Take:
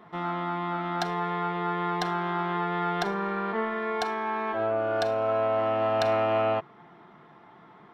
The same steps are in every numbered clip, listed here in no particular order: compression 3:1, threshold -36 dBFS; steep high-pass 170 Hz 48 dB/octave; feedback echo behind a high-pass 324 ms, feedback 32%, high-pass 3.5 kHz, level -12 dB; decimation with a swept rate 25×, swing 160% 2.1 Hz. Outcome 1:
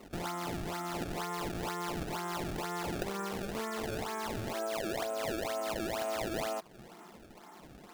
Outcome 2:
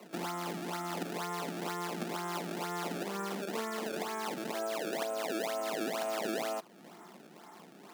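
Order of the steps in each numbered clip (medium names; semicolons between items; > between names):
feedback echo behind a high-pass > compression > steep high-pass > decimation with a swept rate; compression > feedback echo behind a high-pass > decimation with a swept rate > steep high-pass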